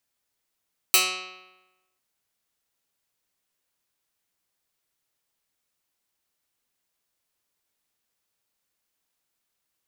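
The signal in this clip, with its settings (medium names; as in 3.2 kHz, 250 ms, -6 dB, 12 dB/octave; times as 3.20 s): plucked string F#3, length 1.05 s, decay 1.08 s, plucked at 0.11, medium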